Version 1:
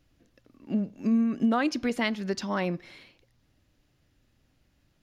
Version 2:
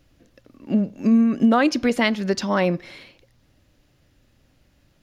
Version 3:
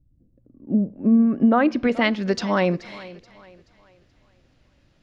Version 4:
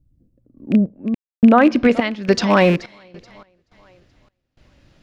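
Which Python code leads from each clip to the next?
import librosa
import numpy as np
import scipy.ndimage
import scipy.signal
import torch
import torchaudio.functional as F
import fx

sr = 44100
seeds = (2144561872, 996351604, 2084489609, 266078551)

y1 = fx.peak_eq(x, sr, hz=550.0, db=4.0, octaves=0.29)
y1 = y1 * 10.0 ** (7.5 / 20.0)
y2 = fx.filter_sweep_lowpass(y1, sr, from_hz=160.0, to_hz=5700.0, start_s=0.08, end_s=2.34, q=0.73)
y2 = fx.echo_thinned(y2, sr, ms=429, feedback_pct=39, hz=160.0, wet_db=-18.5)
y3 = fx.rattle_buzz(y2, sr, strikes_db=-25.0, level_db=-23.0)
y3 = fx.tremolo_random(y3, sr, seeds[0], hz=3.5, depth_pct=100)
y3 = y3 * 10.0 ** (7.5 / 20.0)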